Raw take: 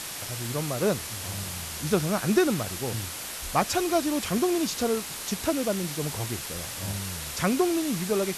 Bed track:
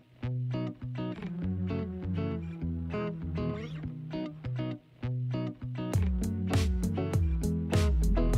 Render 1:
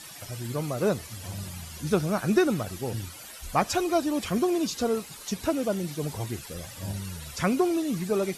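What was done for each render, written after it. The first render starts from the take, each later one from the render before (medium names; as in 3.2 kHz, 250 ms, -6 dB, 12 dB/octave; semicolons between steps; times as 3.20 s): noise reduction 13 dB, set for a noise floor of -37 dBFS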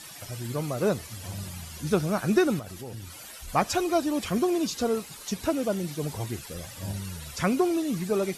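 2.59–3.48 s: compression 3:1, threshold -37 dBFS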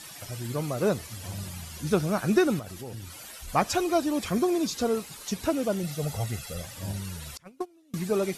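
4.18–4.74 s: band-stop 2.9 kHz, Q 9.2; 5.83–6.62 s: comb 1.5 ms; 7.37–7.94 s: gate -20 dBFS, range -32 dB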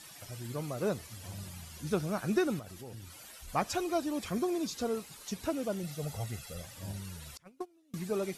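trim -7 dB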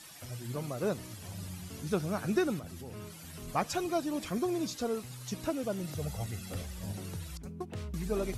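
add bed track -14 dB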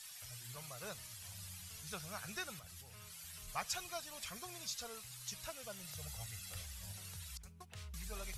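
amplifier tone stack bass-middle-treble 10-0-10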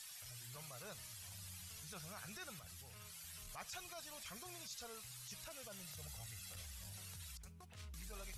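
transient shaper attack -11 dB, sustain +1 dB; compression 2:1, threshold -50 dBFS, peak gain reduction 6 dB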